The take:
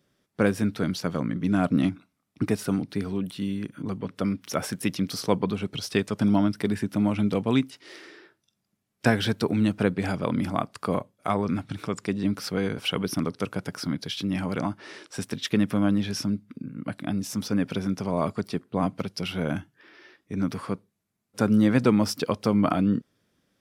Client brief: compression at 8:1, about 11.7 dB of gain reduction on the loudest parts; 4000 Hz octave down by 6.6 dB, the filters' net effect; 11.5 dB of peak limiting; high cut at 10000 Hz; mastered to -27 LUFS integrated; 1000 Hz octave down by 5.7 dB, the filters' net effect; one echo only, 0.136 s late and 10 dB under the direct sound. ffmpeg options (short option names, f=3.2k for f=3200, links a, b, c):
-af "lowpass=10k,equalizer=f=1k:t=o:g=-7.5,equalizer=f=4k:t=o:g=-9,acompressor=threshold=-29dB:ratio=8,alimiter=level_in=1.5dB:limit=-24dB:level=0:latency=1,volume=-1.5dB,aecho=1:1:136:0.316,volume=9.5dB"